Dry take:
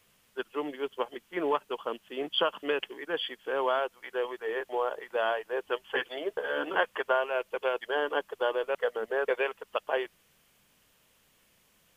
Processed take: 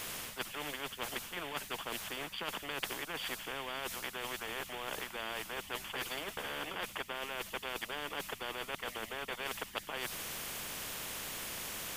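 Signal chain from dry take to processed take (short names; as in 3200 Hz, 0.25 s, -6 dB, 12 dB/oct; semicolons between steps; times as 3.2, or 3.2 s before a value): reverse; compressor, threshold -38 dBFS, peak gain reduction 16.5 dB; reverse; spectral compressor 4:1; gain +4.5 dB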